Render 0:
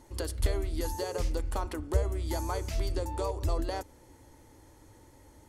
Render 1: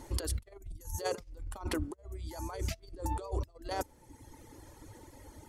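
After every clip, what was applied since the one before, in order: negative-ratio compressor -36 dBFS, ratio -0.5; reverb removal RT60 1.4 s; spectral gain 0.57–1, 210–5400 Hz -14 dB; gain +1 dB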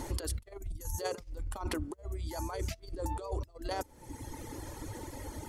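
compressor 3:1, threshold -46 dBFS, peak gain reduction 13 dB; gain +10 dB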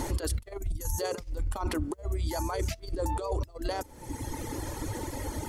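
limiter -29 dBFS, peak gain reduction 10 dB; gain +7.5 dB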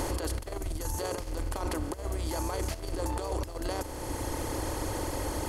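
per-bin compression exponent 0.4; gain -6 dB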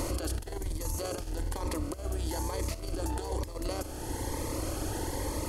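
cascading phaser rising 1.1 Hz

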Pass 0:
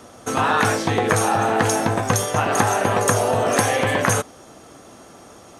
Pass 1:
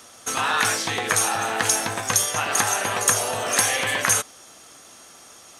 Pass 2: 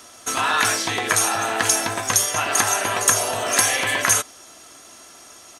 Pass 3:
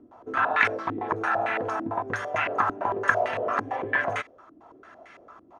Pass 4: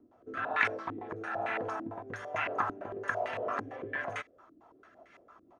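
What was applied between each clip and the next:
tilt shelf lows -9 dB, about 1200 Hz; gain -3.5 dB
comb 3 ms, depth 31%; gain +1.5 dB
upward compressor, threshold -37 dBFS; stepped low-pass 8.9 Hz 300–2100 Hz; gain -7 dB
rotary speaker horn 1.1 Hz, later 6 Hz, at 3.84; gain -6 dB

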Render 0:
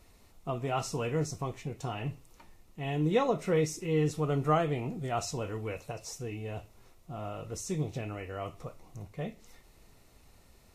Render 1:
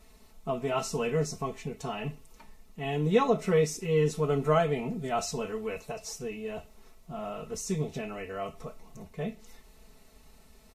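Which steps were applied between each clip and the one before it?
comb 4.6 ms, depth 91%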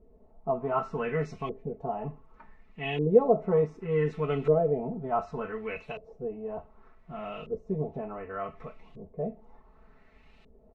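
LFO low-pass saw up 0.67 Hz 430–3100 Hz; gain -2 dB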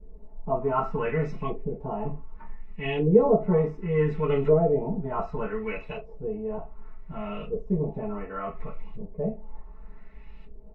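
reverb RT60 0.15 s, pre-delay 3 ms, DRR -5 dB; gain -9 dB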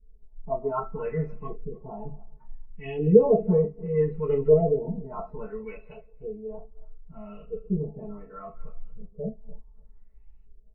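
regenerating reverse delay 0.149 s, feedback 48%, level -13 dB; spectral expander 1.5:1; gain +2.5 dB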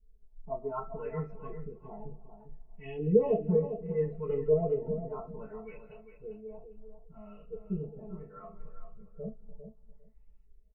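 feedback echo 0.4 s, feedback 15%, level -9.5 dB; gain -7.5 dB

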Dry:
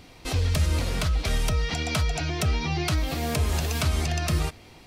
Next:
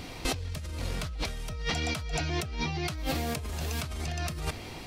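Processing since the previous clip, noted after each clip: negative-ratio compressor -33 dBFS, ratio -1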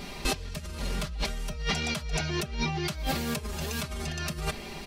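comb 5 ms, depth 83%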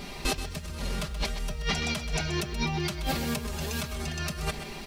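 lo-fi delay 0.128 s, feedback 35%, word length 9-bit, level -10.5 dB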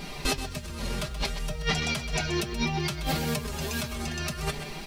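flange 0.62 Hz, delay 6.2 ms, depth 2.7 ms, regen +52%; gain +5.5 dB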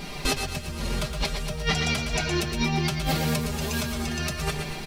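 feedback echo 0.115 s, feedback 48%, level -8 dB; gain +2 dB

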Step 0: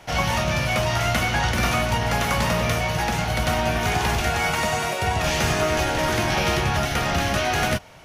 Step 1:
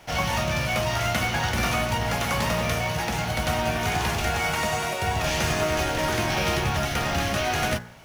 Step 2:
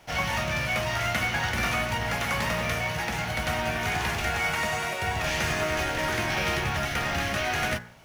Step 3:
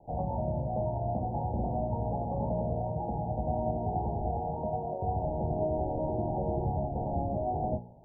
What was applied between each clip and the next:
de-hum 59.54 Hz, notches 36; in parallel at -4.5 dB: companded quantiser 4-bit; on the sum: gain -6.5 dB
dynamic EQ 1900 Hz, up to +6 dB, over -41 dBFS, Q 1.3; gain -4.5 dB
steep low-pass 880 Hz 96 dB/oct

